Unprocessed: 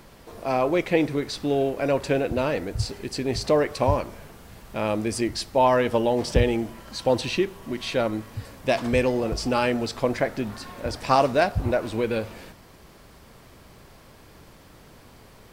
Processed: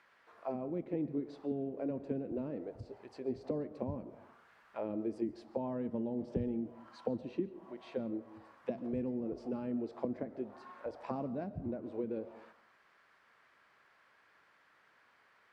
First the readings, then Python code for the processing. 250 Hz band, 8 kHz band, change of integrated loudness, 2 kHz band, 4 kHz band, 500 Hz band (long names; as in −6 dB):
−10.0 dB, below −35 dB, −15.0 dB, −27.5 dB, below −30 dB, −16.5 dB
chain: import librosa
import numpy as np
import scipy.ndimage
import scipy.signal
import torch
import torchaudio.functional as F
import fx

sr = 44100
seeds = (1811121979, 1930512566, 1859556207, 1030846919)

y = fx.auto_wah(x, sr, base_hz=210.0, top_hz=1800.0, q=2.1, full_db=-19.5, direction='down')
y = fx.rev_freeverb(y, sr, rt60_s=0.61, hf_ratio=0.4, predelay_ms=95, drr_db=16.5)
y = y * 10.0 ** (-7.0 / 20.0)